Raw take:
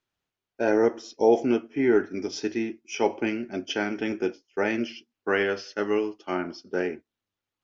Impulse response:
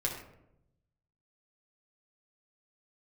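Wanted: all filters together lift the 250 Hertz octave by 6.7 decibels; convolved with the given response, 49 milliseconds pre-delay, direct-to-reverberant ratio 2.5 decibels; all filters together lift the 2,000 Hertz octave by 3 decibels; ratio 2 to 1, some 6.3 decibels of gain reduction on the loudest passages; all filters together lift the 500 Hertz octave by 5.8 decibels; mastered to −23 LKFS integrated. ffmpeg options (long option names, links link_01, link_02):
-filter_complex "[0:a]equalizer=frequency=250:width_type=o:gain=7,equalizer=frequency=500:width_type=o:gain=4.5,equalizer=frequency=2000:width_type=o:gain=3.5,acompressor=threshold=-21dB:ratio=2,asplit=2[link_01][link_02];[1:a]atrim=start_sample=2205,adelay=49[link_03];[link_02][link_03]afir=irnorm=-1:irlink=0,volume=-7dB[link_04];[link_01][link_04]amix=inputs=2:normalize=0"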